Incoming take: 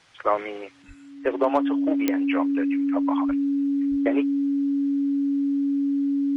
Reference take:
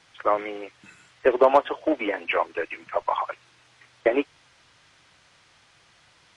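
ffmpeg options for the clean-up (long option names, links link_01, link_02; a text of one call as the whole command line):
ffmpeg -i in.wav -filter_complex "[0:a]adeclick=threshold=4,bandreject=frequency=280:width=30,asplit=3[link_01][link_02][link_03];[link_01]afade=type=out:start_time=0.87:duration=0.02[link_04];[link_02]highpass=frequency=140:width=0.5412,highpass=frequency=140:width=1.3066,afade=type=in:start_time=0.87:duration=0.02,afade=type=out:start_time=0.99:duration=0.02[link_05];[link_03]afade=type=in:start_time=0.99:duration=0.02[link_06];[link_04][link_05][link_06]amix=inputs=3:normalize=0,asplit=3[link_07][link_08][link_09];[link_07]afade=type=out:start_time=3.27:duration=0.02[link_10];[link_08]highpass=frequency=140:width=0.5412,highpass=frequency=140:width=1.3066,afade=type=in:start_time=3.27:duration=0.02,afade=type=out:start_time=3.39:duration=0.02[link_11];[link_09]afade=type=in:start_time=3.39:duration=0.02[link_12];[link_10][link_11][link_12]amix=inputs=3:normalize=0,asplit=3[link_13][link_14][link_15];[link_13]afade=type=out:start_time=3.9:duration=0.02[link_16];[link_14]highpass=frequency=140:width=0.5412,highpass=frequency=140:width=1.3066,afade=type=in:start_time=3.9:duration=0.02,afade=type=out:start_time=4.02:duration=0.02[link_17];[link_15]afade=type=in:start_time=4.02:duration=0.02[link_18];[link_16][link_17][link_18]amix=inputs=3:normalize=0,asetnsamples=nb_out_samples=441:pad=0,asendcmd='0.82 volume volume 5dB',volume=0dB" out.wav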